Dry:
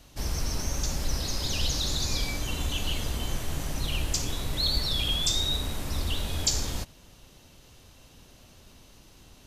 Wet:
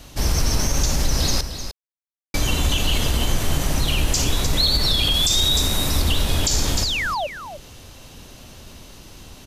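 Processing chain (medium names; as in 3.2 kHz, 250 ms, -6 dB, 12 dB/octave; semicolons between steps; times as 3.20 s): 1.41–2.34 s: mute; 5.14–6.02 s: treble shelf 5.5 kHz +6 dB; 6.82–7.27 s: painted sound fall 540–5500 Hz -35 dBFS; delay 303 ms -11 dB; loudness maximiser +19.5 dB; trim -8.5 dB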